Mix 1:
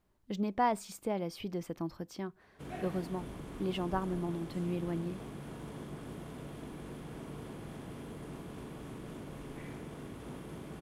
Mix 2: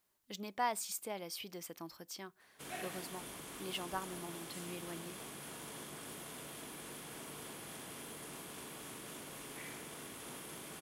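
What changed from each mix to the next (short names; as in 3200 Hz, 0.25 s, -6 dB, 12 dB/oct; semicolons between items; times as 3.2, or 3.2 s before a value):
speech -4.5 dB; master: add tilt +4 dB/oct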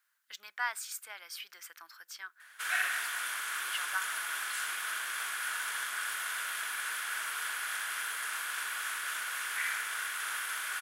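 background +10.0 dB; master: add resonant high-pass 1500 Hz, resonance Q 4.9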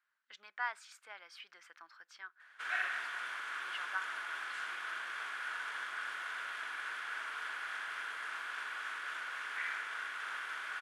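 master: add tape spacing loss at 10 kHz 24 dB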